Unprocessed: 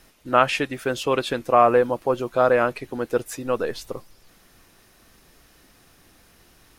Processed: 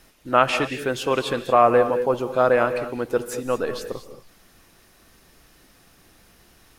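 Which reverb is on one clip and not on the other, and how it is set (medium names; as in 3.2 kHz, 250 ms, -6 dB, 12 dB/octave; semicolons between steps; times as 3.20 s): gated-style reverb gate 250 ms rising, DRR 10 dB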